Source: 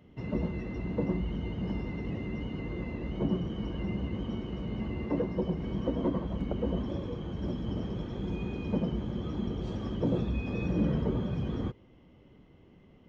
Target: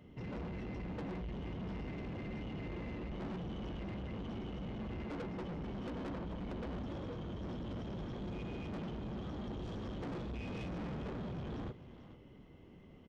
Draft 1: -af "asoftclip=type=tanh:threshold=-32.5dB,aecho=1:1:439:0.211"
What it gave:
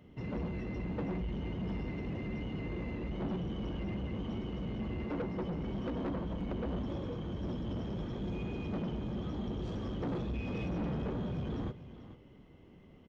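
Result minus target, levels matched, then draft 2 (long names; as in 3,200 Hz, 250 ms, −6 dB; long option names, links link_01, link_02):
soft clipping: distortion −4 dB
-af "asoftclip=type=tanh:threshold=-40dB,aecho=1:1:439:0.211"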